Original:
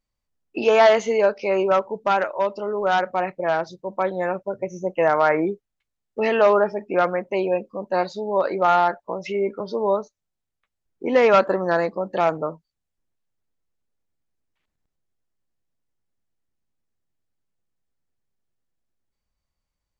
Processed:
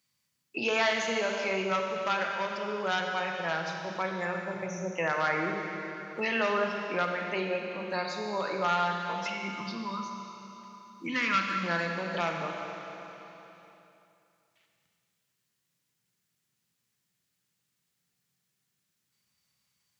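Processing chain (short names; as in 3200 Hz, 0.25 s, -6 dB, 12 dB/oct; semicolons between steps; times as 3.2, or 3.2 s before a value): HPF 130 Hz 24 dB/oct; bell 650 Hz -14 dB 1.9 oct; notches 50/100/150/200/250/300/350/400/450 Hz; spectral gain 9.16–11.64, 350–980 Hz -17 dB; bell 270 Hz -7 dB 0.95 oct; Schroeder reverb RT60 2.4 s, combs from 31 ms, DRR 2.5 dB; three-band squash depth 40%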